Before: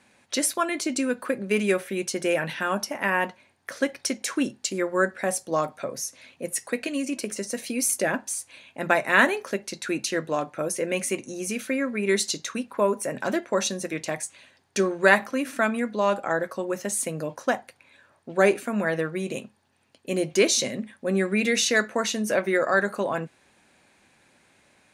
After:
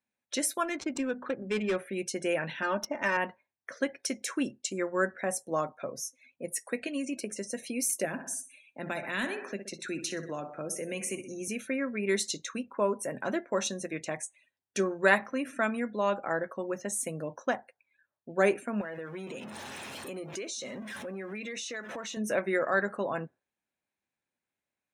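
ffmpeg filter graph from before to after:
-filter_complex "[0:a]asettb=1/sr,asplit=3[a][b][c];[a]atrim=end=0.644[d];[b]atrim=start=0.64:end=1.76,asetpts=PTS-STARTPTS,afade=t=in:d=0.004:c=qsin,afade=t=out:st=1.116:d=0.004:c=qsin,bandreject=f=50:t=h:w=6,bandreject=f=100:t=h:w=6,bandreject=f=150:t=h:w=6,bandreject=f=200:t=h:w=6,bandreject=f=250:t=h:w=6,asoftclip=type=hard:threshold=-18.5dB,adynamicsmooth=sensitivity=7:basefreq=520[e];[c]atrim=start=1.756[f];[d][e]acrossfade=d=0.004:c1=hsin:c2=qsin[g];[g][f]acrossfade=d=0.004:c1=qsin:c2=hsin,asettb=1/sr,asplit=3[h][i][j];[h]atrim=end=2.624[k];[i]atrim=start=2.62:end=3.17,asetpts=PTS-STARTPTS,afade=t=in:d=0.004:c=qsin,afade=t=out:st=0.546:d=0.004:c=qsin,aecho=1:1:3.3:0.65,atrim=end_sample=24255,adynamicsmooth=sensitivity=5:basefreq=1.6k[l];[j]atrim=start=3.166[m];[k][l]acrossfade=d=0.004:c1=hsin:c2=qsin[n];[n][m]acrossfade=d=0.004:c1=qsin:c2=hsin,asettb=1/sr,asplit=3[o][p][q];[o]atrim=end=8.054[r];[p]atrim=start=8.05:end=11.48,asetpts=PTS-STARTPTS,afade=t=in:d=0.004:c=qsin,afade=t=out:st=3.426:d=0.004:c=qsin,aecho=1:1:62|124|186|248|310|372:0.224|0.121|0.0653|0.0353|0.019|0.0103,atrim=end_sample=151263,acrossover=split=260|3000[s][t][u];[t]acompressor=threshold=-31dB:ratio=2.5:attack=3.2:release=140:knee=2.83:detection=peak[v];[s][v][u]amix=inputs=3:normalize=0,asoftclip=type=hard:threshold=-18dB[w];[q]atrim=start=11.476[x];[r][w]acrossfade=d=0.004:c1=hsin:c2=qsin[y];[y][x]acrossfade=d=0.004:c1=qsin:c2=hsin,asettb=1/sr,asplit=3[z][aa][ab];[z]atrim=end=18.814[ac];[aa]atrim=start=18.81:end=22.17,asetpts=PTS-STARTPTS,afade=t=in:d=0.004:c=qsin,afade=t=out:st=3.356:d=0.004:c=qsin,aeval=exprs='val(0)+0.5*0.0376*sgn(val(0))':c=same,highpass=f=260:p=1,acompressor=threshold=-31dB:ratio=4:attack=3.2:release=140:knee=1:detection=peak[ad];[ab]atrim=start=22.166[ae];[ac][ad]acrossfade=d=0.004:c1=hsin:c2=qsin[af];[af][ae]acrossfade=d=0.004:c1=qsin:c2=hsin,bandreject=f=4.6k:w=13,afftdn=nr=25:nf=-44,volume=-5.5dB"

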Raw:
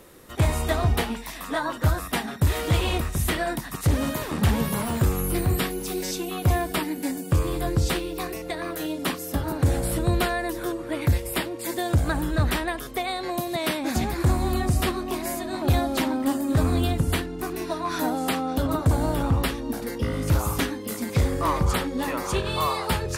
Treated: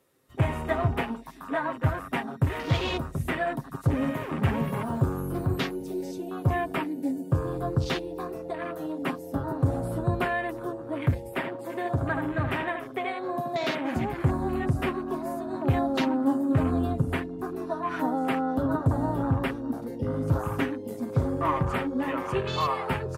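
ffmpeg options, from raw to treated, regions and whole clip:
-filter_complex "[0:a]asettb=1/sr,asplit=3[a][b][c];[a]atrim=end=11.294[d];[b]atrim=start=11.29:end=13.95,asetpts=PTS-STARTPTS,afade=t=in:d=0.004:c=qsin,afade=t=out:st=2.656:d=0.004:c=qsin,bass=f=250:g=-4,treble=f=4k:g=-3,asplit=2[e][f];[f]adelay=76,lowpass=f=3.1k:p=1,volume=-6dB,asplit=2[g][h];[h]adelay=76,lowpass=f=3.1k:p=1,volume=0.33,asplit=2[i][j];[j]adelay=76,lowpass=f=3.1k:p=1,volume=0.33,asplit=2[k][l];[l]adelay=76,lowpass=f=3.1k:p=1,volume=0.33[m];[e][g][i][k][m]amix=inputs=5:normalize=0,atrim=end_sample=117306[n];[c]atrim=start=13.946[o];[d][n]acrossfade=d=0.004:c1=hsin:c2=qsin[p];[p][o]acrossfade=d=0.004:c1=qsin:c2=hsin,afwtdn=0.02,highpass=77,aecho=1:1:7.5:0.46,volume=-2.5dB"

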